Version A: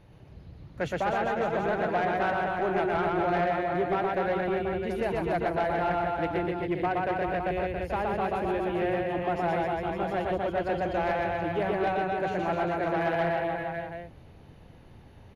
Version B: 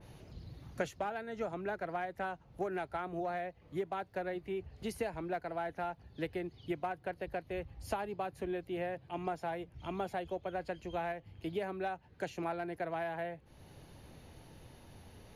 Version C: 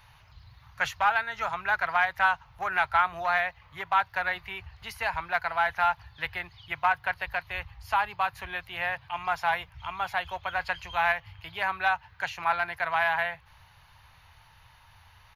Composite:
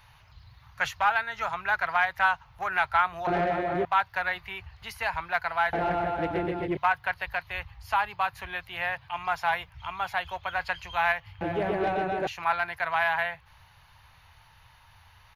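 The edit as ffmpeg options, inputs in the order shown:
-filter_complex "[0:a]asplit=3[s0][s1][s2];[2:a]asplit=4[s3][s4][s5][s6];[s3]atrim=end=3.272[s7];[s0]atrim=start=3.268:end=3.852[s8];[s4]atrim=start=3.848:end=5.732[s9];[s1]atrim=start=5.728:end=6.772[s10];[s5]atrim=start=6.768:end=11.412[s11];[s2]atrim=start=11.408:end=12.272[s12];[s6]atrim=start=12.268[s13];[s7][s8]acrossfade=d=0.004:c1=hsin:c2=hsin[s14];[s14][s9]acrossfade=d=0.004:c1=hsin:c2=hsin[s15];[s15][s10]acrossfade=d=0.004:c1=hsin:c2=hsin[s16];[s16][s11]acrossfade=d=0.004:c1=hsin:c2=hsin[s17];[s17][s12]acrossfade=d=0.004:c1=hsin:c2=hsin[s18];[s18][s13]acrossfade=d=0.004:c1=hsin:c2=hsin"

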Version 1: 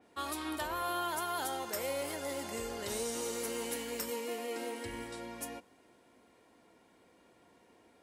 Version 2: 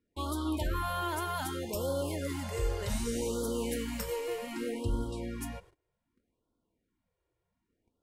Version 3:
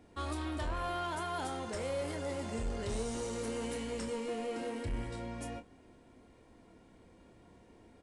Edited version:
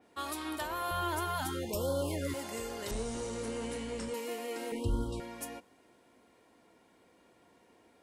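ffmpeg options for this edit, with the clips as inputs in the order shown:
-filter_complex "[1:a]asplit=2[s0][s1];[0:a]asplit=4[s2][s3][s4][s5];[s2]atrim=end=0.912[s6];[s0]atrim=start=0.908:end=2.342[s7];[s3]atrim=start=2.338:end=2.912[s8];[2:a]atrim=start=2.908:end=4.142[s9];[s4]atrim=start=4.138:end=4.722[s10];[s1]atrim=start=4.718:end=5.202[s11];[s5]atrim=start=5.198[s12];[s6][s7]acrossfade=d=0.004:c1=hsin:c2=hsin[s13];[s13][s8]acrossfade=d=0.004:c1=hsin:c2=hsin[s14];[s14][s9]acrossfade=d=0.004:c1=hsin:c2=hsin[s15];[s15][s10]acrossfade=d=0.004:c1=hsin:c2=hsin[s16];[s16][s11]acrossfade=d=0.004:c1=hsin:c2=hsin[s17];[s17][s12]acrossfade=d=0.004:c1=hsin:c2=hsin"

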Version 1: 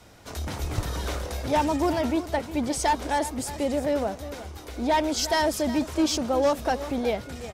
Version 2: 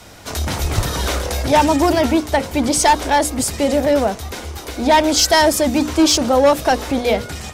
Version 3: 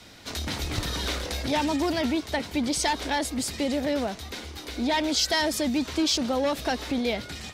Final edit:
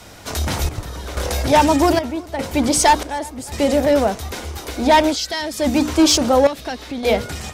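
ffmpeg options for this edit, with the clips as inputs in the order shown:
-filter_complex "[0:a]asplit=3[s0][s1][s2];[2:a]asplit=2[s3][s4];[1:a]asplit=6[s5][s6][s7][s8][s9][s10];[s5]atrim=end=0.692[s11];[s0]atrim=start=0.688:end=1.172[s12];[s6]atrim=start=1.168:end=1.992[s13];[s1]atrim=start=1.988:end=2.392[s14];[s7]atrim=start=2.388:end=3.032[s15];[s2]atrim=start=3.028:end=3.522[s16];[s8]atrim=start=3.518:end=5.17[s17];[s3]atrim=start=5.07:end=5.67[s18];[s9]atrim=start=5.57:end=6.472[s19];[s4]atrim=start=6.468:end=7.032[s20];[s10]atrim=start=7.028[s21];[s11][s12]acrossfade=d=0.004:c1=hsin:c2=hsin[s22];[s22][s13]acrossfade=d=0.004:c1=hsin:c2=hsin[s23];[s23][s14]acrossfade=d=0.004:c1=hsin:c2=hsin[s24];[s24][s15]acrossfade=d=0.004:c1=hsin:c2=hsin[s25];[s25][s16]acrossfade=d=0.004:c1=hsin:c2=hsin[s26];[s26][s17]acrossfade=d=0.004:c1=hsin:c2=hsin[s27];[s27][s18]acrossfade=d=0.1:c1=tri:c2=tri[s28];[s28][s19]acrossfade=d=0.1:c1=tri:c2=tri[s29];[s29][s20]acrossfade=d=0.004:c1=hsin:c2=hsin[s30];[s30][s21]acrossfade=d=0.004:c1=hsin:c2=hsin"

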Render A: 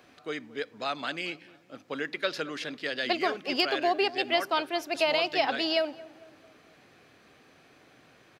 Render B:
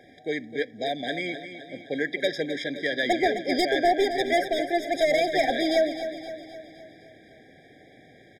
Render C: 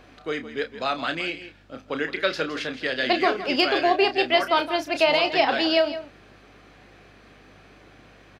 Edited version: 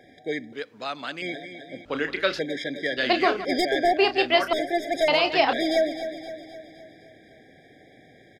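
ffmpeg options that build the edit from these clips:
-filter_complex "[2:a]asplit=4[s0][s1][s2][s3];[1:a]asplit=6[s4][s5][s6][s7][s8][s9];[s4]atrim=end=0.532[s10];[0:a]atrim=start=0.528:end=1.222[s11];[s5]atrim=start=1.218:end=1.852[s12];[s0]atrim=start=1.848:end=2.392[s13];[s6]atrim=start=2.388:end=2.972[s14];[s1]atrim=start=2.968:end=3.452[s15];[s7]atrim=start=3.448:end=3.972[s16];[s2]atrim=start=3.968:end=4.532[s17];[s8]atrim=start=4.528:end=5.082[s18];[s3]atrim=start=5.078:end=5.532[s19];[s9]atrim=start=5.528[s20];[s10][s11]acrossfade=d=0.004:c1=hsin:c2=hsin[s21];[s21][s12]acrossfade=d=0.004:c1=hsin:c2=hsin[s22];[s22][s13]acrossfade=d=0.004:c1=hsin:c2=hsin[s23];[s23][s14]acrossfade=d=0.004:c1=hsin:c2=hsin[s24];[s24][s15]acrossfade=d=0.004:c1=hsin:c2=hsin[s25];[s25][s16]acrossfade=d=0.004:c1=hsin:c2=hsin[s26];[s26][s17]acrossfade=d=0.004:c1=hsin:c2=hsin[s27];[s27][s18]acrossfade=d=0.004:c1=hsin:c2=hsin[s28];[s28][s19]acrossfade=d=0.004:c1=hsin:c2=hsin[s29];[s29][s20]acrossfade=d=0.004:c1=hsin:c2=hsin"

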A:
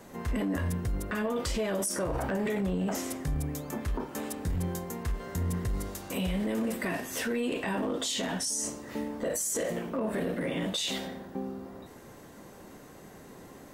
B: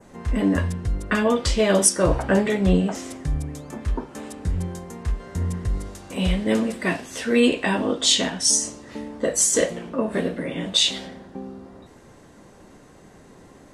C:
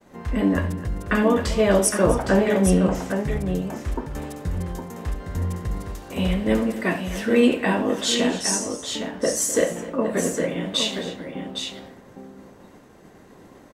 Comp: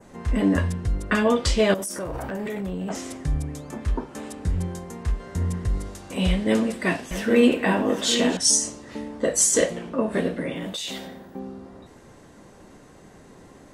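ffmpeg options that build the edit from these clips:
-filter_complex "[0:a]asplit=2[s0][s1];[1:a]asplit=4[s2][s3][s4][s5];[s2]atrim=end=1.742[s6];[s0]atrim=start=1.738:end=2.902[s7];[s3]atrim=start=2.898:end=7.112[s8];[2:a]atrim=start=7.108:end=8.372[s9];[s4]atrim=start=8.368:end=10.552[s10];[s1]atrim=start=10.548:end=11.392[s11];[s5]atrim=start=11.388[s12];[s6][s7]acrossfade=d=0.004:c1=hsin:c2=hsin[s13];[s13][s8]acrossfade=d=0.004:c1=hsin:c2=hsin[s14];[s14][s9]acrossfade=d=0.004:c1=hsin:c2=hsin[s15];[s15][s10]acrossfade=d=0.004:c1=hsin:c2=hsin[s16];[s16][s11]acrossfade=d=0.004:c1=hsin:c2=hsin[s17];[s17][s12]acrossfade=d=0.004:c1=hsin:c2=hsin"

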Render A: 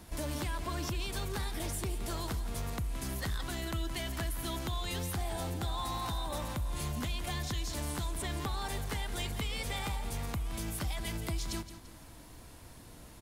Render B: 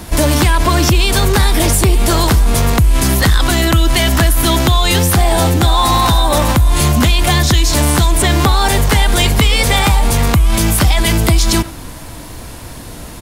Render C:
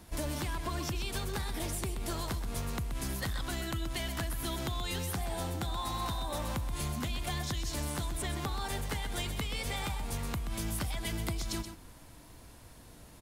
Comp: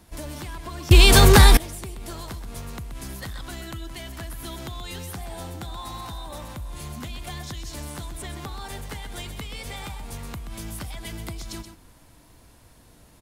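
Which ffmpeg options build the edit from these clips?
-filter_complex "[0:a]asplit=2[s0][s1];[2:a]asplit=4[s2][s3][s4][s5];[s2]atrim=end=0.912[s6];[1:a]atrim=start=0.908:end=1.572[s7];[s3]atrim=start=1.568:end=3.842[s8];[s0]atrim=start=3.838:end=4.242[s9];[s4]atrim=start=4.238:end=6.012[s10];[s1]atrim=start=6.008:end=6.902[s11];[s5]atrim=start=6.898[s12];[s6][s7]acrossfade=d=0.004:c1=hsin:c2=hsin[s13];[s13][s8]acrossfade=d=0.004:c1=hsin:c2=hsin[s14];[s14][s9]acrossfade=d=0.004:c1=hsin:c2=hsin[s15];[s15][s10]acrossfade=d=0.004:c1=hsin:c2=hsin[s16];[s16][s11]acrossfade=d=0.004:c1=hsin:c2=hsin[s17];[s17][s12]acrossfade=d=0.004:c1=hsin:c2=hsin"

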